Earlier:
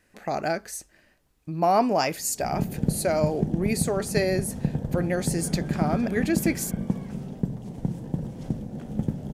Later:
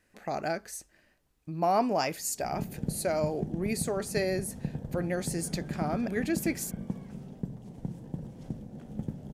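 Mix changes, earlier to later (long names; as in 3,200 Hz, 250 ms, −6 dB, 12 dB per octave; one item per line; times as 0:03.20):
speech −5.0 dB
background −8.5 dB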